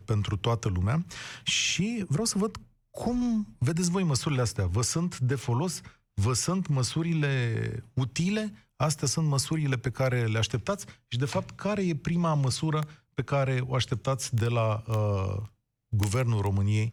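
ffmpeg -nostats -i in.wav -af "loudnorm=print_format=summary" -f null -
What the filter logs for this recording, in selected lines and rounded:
Input Integrated:    -28.5 LUFS
Input True Peak:     -14.8 dBTP
Input LRA:             0.6 LU
Input Threshold:     -38.6 LUFS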